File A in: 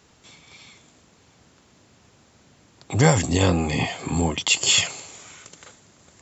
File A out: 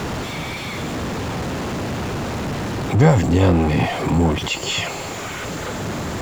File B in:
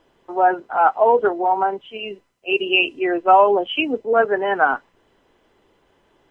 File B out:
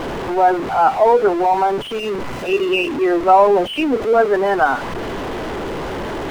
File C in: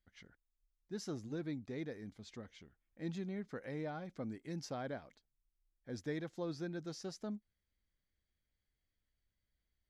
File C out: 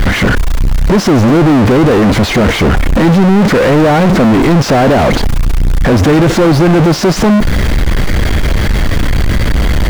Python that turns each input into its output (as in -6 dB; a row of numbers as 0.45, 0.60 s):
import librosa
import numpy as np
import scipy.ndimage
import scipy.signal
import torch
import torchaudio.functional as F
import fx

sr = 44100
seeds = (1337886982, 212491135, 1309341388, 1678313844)

y = x + 0.5 * 10.0 ** (-18.5 / 20.0) * np.sign(x)
y = fx.lowpass(y, sr, hz=1200.0, slope=6)
y = y * 10.0 ** (-3 / 20.0) / np.max(np.abs(y))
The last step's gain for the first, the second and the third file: +2.5, +1.5, +17.5 dB